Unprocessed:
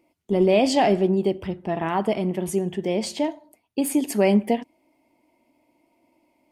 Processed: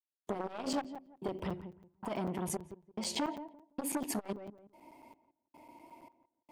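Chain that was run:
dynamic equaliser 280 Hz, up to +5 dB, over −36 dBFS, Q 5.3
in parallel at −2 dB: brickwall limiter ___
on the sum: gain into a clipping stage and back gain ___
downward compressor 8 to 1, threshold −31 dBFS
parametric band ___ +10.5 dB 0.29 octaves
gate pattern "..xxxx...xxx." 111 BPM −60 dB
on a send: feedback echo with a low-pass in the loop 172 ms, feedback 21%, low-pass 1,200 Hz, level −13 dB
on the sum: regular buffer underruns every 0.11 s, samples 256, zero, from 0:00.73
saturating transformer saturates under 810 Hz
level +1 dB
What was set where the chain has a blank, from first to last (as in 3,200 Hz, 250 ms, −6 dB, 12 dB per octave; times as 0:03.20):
−15.5 dBFS, 12 dB, 940 Hz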